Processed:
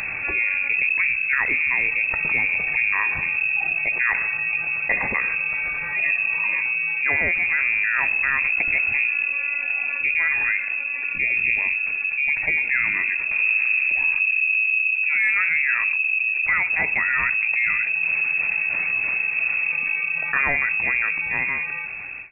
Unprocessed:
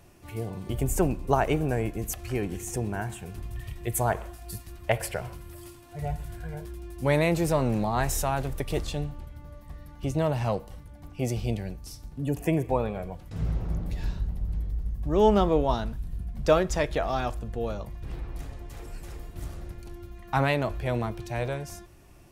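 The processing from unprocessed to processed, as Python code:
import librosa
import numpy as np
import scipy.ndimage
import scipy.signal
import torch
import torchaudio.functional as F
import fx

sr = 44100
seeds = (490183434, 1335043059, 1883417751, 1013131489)

y = fx.fade_out_tail(x, sr, length_s=2.51)
y = fx.rider(y, sr, range_db=3, speed_s=0.5)
y = np.clip(y, -10.0 ** (-14.0 / 20.0), 10.0 ** (-14.0 / 20.0))
y = fx.freq_invert(y, sr, carrier_hz=2600)
y = fx.env_flatten(y, sr, amount_pct=70)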